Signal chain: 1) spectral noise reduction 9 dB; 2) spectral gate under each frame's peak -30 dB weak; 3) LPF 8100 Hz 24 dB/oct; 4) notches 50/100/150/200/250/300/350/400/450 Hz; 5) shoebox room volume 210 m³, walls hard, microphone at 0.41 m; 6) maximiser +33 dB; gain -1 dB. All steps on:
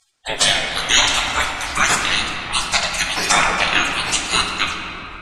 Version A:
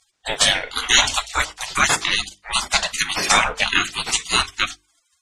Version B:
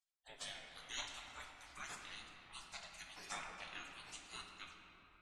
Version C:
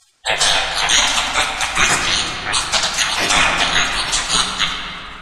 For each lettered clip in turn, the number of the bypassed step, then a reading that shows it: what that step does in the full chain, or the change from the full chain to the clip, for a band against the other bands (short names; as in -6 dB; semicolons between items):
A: 5, crest factor change +2.0 dB; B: 6, crest factor change +5.0 dB; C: 1, 4 kHz band +1.5 dB